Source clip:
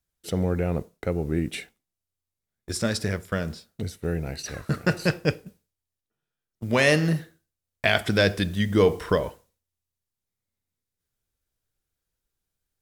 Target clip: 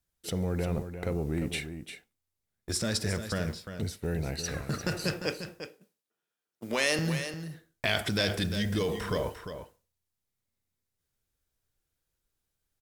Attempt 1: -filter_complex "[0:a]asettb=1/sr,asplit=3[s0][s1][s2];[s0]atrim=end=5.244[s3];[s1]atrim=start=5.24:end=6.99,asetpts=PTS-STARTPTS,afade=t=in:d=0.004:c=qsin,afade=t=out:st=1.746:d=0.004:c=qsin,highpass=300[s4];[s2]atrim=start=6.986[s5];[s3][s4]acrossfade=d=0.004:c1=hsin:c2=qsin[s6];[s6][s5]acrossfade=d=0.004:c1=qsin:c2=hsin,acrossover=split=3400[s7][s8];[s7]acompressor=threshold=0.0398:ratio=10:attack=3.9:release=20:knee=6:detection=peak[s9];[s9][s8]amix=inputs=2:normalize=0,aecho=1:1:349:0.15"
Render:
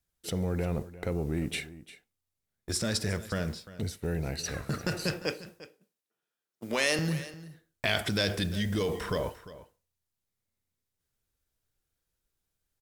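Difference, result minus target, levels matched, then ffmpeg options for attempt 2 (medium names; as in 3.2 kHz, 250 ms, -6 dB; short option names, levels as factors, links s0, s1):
echo-to-direct -7 dB
-filter_complex "[0:a]asettb=1/sr,asplit=3[s0][s1][s2];[s0]atrim=end=5.244[s3];[s1]atrim=start=5.24:end=6.99,asetpts=PTS-STARTPTS,afade=t=in:d=0.004:c=qsin,afade=t=out:st=1.746:d=0.004:c=qsin,highpass=300[s4];[s2]atrim=start=6.986[s5];[s3][s4]acrossfade=d=0.004:c1=hsin:c2=qsin[s6];[s6][s5]acrossfade=d=0.004:c1=qsin:c2=hsin,acrossover=split=3400[s7][s8];[s7]acompressor=threshold=0.0398:ratio=10:attack=3.9:release=20:knee=6:detection=peak[s9];[s9][s8]amix=inputs=2:normalize=0,aecho=1:1:349:0.335"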